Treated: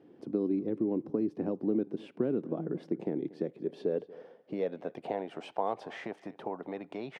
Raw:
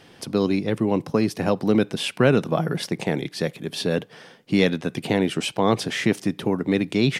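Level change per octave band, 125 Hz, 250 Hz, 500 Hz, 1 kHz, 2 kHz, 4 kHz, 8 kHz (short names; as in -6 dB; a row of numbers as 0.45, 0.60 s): -18.5 dB, -11.0 dB, -10.5 dB, -10.5 dB, -21.5 dB, -26.0 dB, under -30 dB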